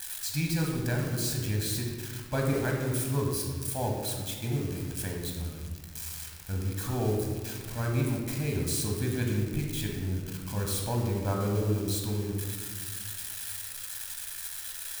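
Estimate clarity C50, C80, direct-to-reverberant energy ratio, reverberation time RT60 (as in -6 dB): 3.0 dB, 4.0 dB, 0.0 dB, 1.7 s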